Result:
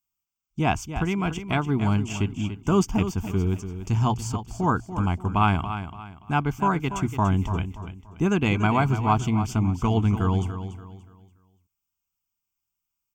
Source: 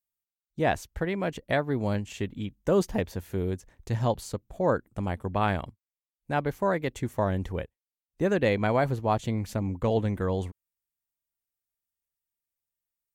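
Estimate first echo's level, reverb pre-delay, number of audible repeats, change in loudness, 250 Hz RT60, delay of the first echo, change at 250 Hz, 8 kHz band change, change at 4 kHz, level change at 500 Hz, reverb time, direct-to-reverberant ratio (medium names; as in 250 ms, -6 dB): -10.5 dB, no reverb, 3, +4.0 dB, no reverb, 288 ms, +6.0 dB, +7.0 dB, +5.0 dB, -3.0 dB, no reverb, no reverb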